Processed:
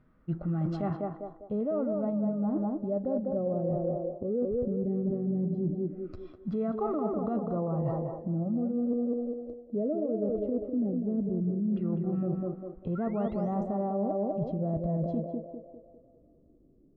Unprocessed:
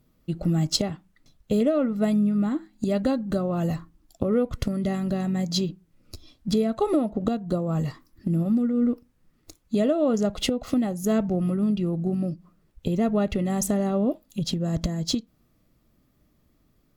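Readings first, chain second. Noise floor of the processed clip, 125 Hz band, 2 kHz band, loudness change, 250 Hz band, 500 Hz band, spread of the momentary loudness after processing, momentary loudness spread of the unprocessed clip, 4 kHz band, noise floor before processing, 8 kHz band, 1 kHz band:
-61 dBFS, -5.0 dB, under -15 dB, -6.0 dB, -6.0 dB, -3.5 dB, 6 LU, 8 LU, under -30 dB, -66 dBFS, under -40 dB, -3.5 dB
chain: painted sound rise, 12.95–13.62 s, 1.3–9.3 kHz -37 dBFS; in parallel at +2.5 dB: peak limiter -20 dBFS, peak gain reduction 11 dB; on the sum: LFO low-pass saw down 0.17 Hz 280–1600 Hz; band-passed feedback delay 200 ms, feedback 53%, band-pass 520 Hz, level -3 dB; harmonic-percussive split percussive -6 dB; reverse; compression 10:1, threshold -21 dBFS, peak gain reduction 12.5 dB; reverse; trim -5.5 dB

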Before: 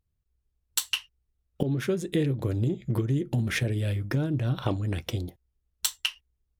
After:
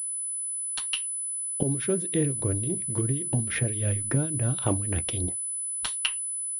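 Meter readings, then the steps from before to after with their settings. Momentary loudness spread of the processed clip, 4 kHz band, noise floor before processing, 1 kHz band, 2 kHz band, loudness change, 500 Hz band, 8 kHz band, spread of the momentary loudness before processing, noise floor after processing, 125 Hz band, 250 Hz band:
4 LU, -2.0 dB, -78 dBFS, +0.5 dB, -1.5 dB, +2.0 dB, 0.0 dB, +12.5 dB, 5 LU, -32 dBFS, -1.0 dB, -1.0 dB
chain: gain riding 0.5 s; harmonic tremolo 3.6 Hz, depth 70%, crossover 2.4 kHz; class-D stage that switches slowly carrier 10 kHz; trim +2.5 dB

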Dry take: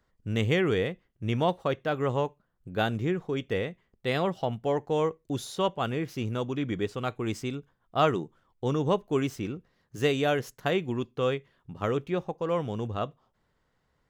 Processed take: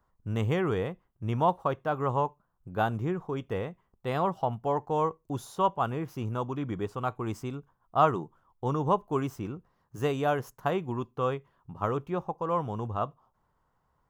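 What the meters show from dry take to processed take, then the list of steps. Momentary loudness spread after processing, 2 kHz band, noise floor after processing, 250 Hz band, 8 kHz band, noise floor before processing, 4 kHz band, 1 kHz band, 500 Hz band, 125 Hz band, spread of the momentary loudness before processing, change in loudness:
11 LU, -5.0 dB, -74 dBFS, -3.0 dB, -6.0 dB, -74 dBFS, -9.5 dB, +4.0 dB, -2.5 dB, -1.0 dB, 10 LU, -1.0 dB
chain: graphic EQ 250/500/1000/2000/4000/8000 Hz -3/-4/+9/-8/-9/-4 dB

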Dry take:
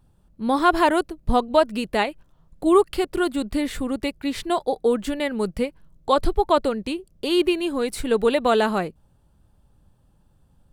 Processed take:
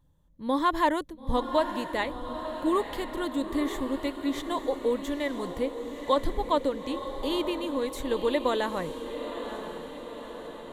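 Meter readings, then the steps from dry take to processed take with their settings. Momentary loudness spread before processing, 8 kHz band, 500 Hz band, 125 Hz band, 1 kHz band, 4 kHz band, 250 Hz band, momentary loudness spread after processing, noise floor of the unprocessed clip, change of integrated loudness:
9 LU, -7.5 dB, -7.0 dB, -7.0 dB, -6.0 dB, -6.0 dB, -6.0 dB, 10 LU, -60 dBFS, -7.0 dB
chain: rippled EQ curve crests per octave 1.1, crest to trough 9 dB; echo that smears into a reverb 931 ms, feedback 60%, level -9 dB; trim -8 dB

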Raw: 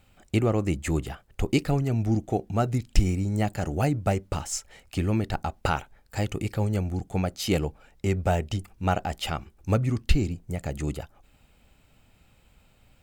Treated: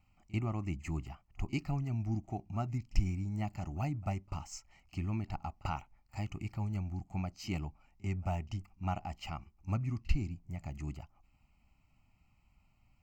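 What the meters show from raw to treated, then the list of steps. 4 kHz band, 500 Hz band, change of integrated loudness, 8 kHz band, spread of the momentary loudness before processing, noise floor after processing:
-15.0 dB, -18.5 dB, -11.0 dB, -16.0 dB, 8 LU, -71 dBFS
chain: treble shelf 4.4 kHz -7.5 dB; static phaser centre 2.4 kHz, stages 8; pre-echo 43 ms -23 dB; trim -8.5 dB

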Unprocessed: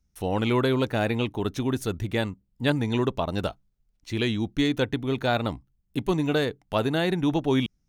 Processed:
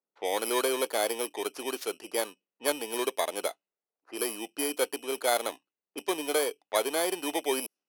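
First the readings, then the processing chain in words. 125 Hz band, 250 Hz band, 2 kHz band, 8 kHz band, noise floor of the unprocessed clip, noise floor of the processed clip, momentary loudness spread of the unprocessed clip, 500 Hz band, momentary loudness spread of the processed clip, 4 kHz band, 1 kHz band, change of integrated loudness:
under -35 dB, -12.5 dB, -4.0 dB, +13.0 dB, -72 dBFS, under -85 dBFS, 7 LU, -2.5 dB, 8 LU, -2.0 dB, -2.0 dB, -4.0 dB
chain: bit-reversed sample order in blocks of 16 samples; level-controlled noise filter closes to 970 Hz, open at -23.5 dBFS; high-pass 410 Hz 24 dB/octave

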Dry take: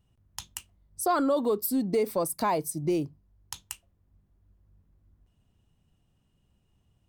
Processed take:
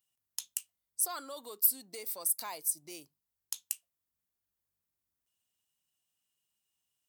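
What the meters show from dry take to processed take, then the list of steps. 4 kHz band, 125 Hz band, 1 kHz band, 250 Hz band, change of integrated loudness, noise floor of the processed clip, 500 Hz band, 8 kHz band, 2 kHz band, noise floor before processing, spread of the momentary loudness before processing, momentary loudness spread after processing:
-2.5 dB, under -30 dB, -15.5 dB, -26.0 dB, -5.0 dB, under -85 dBFS, -21.0 dB, +3.5 dB, -10.0 dB, -71 dBFS, 18 LU, 16 LU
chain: differentiator; trim +2 dB

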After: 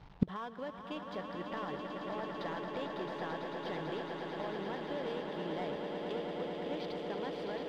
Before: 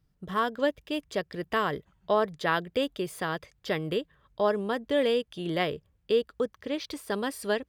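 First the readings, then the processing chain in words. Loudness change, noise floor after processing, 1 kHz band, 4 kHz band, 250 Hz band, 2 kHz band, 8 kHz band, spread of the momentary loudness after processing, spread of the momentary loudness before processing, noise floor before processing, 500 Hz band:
-9.5 dB, -48 dBFS, -8.5 dB, -11.0 dB, -6.5 dB, -11.5 dB, under -15 dB, 3 LU, 7 LU, -71 dBFS, -10.5 dB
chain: CVSD coder 64 kbps; low-pass 4.3 kHz 24 dB/octave; peaking EQ 860 Hz +8 dB 0.55 oct; peak limiter -17.5 dBFS, peak gain reduction 7.5 dB; waveshaping leveller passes 1; compression, threshold -26 dBFS, peak gain reduction 5.5 dB; echo with a slow build-up 111 ms, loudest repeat 8, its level -8 dB; inverted gate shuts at -31 dBFS, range -29 dB; trim +16.5 dB

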